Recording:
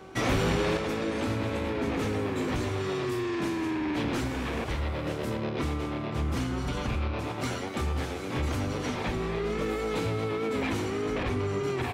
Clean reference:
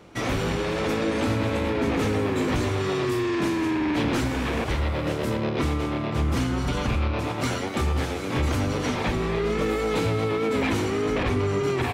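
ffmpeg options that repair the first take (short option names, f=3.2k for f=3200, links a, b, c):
-af "bandreject=f=380.4:t=h:w=4,bandreject=f=760.8:t=h:w=4,bandreject=f=1.1412k:t=h:w=4,bandreject=f=1.5216k:t=h:w=4,asetnsamples=n=441:p=0,asendcmd='0.77 volume volume 5.5dB',volume=0dB"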